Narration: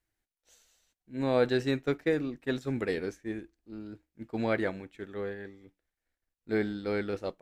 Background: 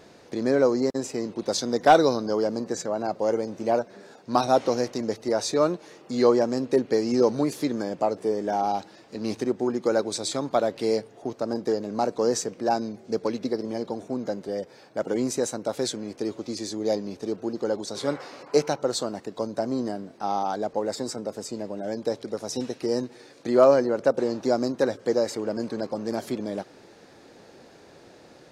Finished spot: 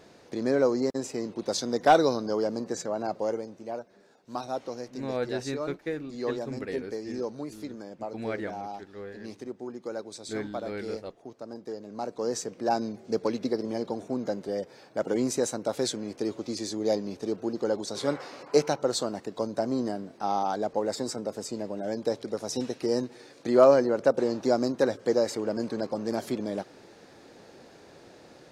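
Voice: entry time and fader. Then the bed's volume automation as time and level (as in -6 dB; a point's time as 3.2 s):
3.80 s, -5.0 dB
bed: 3.18 s -3 dB
3.65 s -12.5 dB
11.68 s -12.5 dB
12.84 s -1 dB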